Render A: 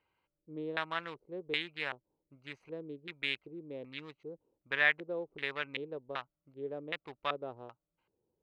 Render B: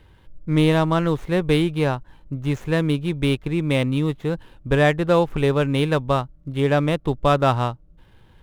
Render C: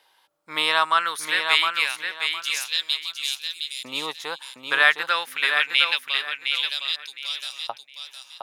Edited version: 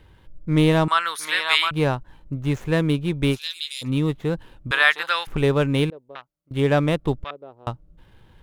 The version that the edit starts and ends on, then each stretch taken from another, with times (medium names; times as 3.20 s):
B
0.88–1.71 s: from C
3.35–3.86 s: from C, crossfade 0.10 s
4.71–5.27 s: from C
5.90–6.51 s: from A
7.24–7.67 s: from A